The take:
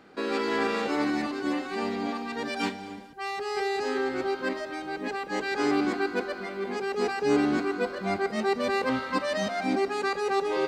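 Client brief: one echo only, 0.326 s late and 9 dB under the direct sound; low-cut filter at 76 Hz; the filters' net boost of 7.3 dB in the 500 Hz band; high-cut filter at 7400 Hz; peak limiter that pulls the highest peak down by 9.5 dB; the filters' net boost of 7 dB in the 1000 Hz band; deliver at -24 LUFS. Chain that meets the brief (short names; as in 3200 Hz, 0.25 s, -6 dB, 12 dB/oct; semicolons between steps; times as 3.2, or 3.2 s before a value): HPF 76 Hz; LPF 7400 Hz; bell 500 Hz +8.5 dB; bell 1000 Hz +6 dB; limiter -17 dBFS; echo 0.326 s -9 dB; gain +1.5 dB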